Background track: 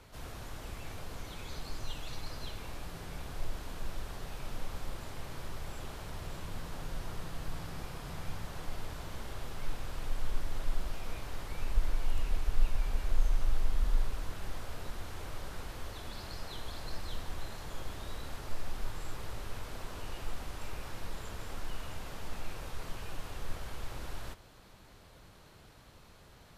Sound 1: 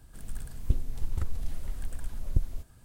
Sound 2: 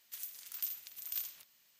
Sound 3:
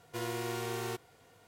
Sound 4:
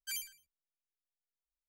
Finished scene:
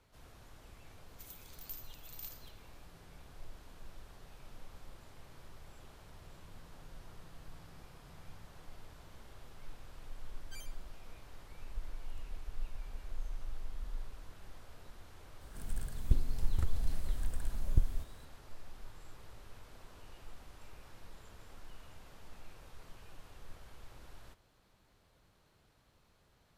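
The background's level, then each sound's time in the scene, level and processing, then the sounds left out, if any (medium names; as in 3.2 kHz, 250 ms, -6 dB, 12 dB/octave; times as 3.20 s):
background track -12.5 dB
1.07 s: add 2 -9 dB
10.44 s: add 4 -10.5 dB + peaking EQ 14 kHz -10.5 dB
15.41 s: add 1 -3 dB + harmonic-percussive split harmonic +3 dB
not used: 3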